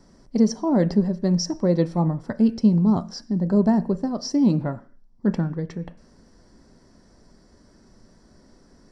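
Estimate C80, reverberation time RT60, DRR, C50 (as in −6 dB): 23.5 dB, 0.45 s, 11.0 dB, 19.0 dB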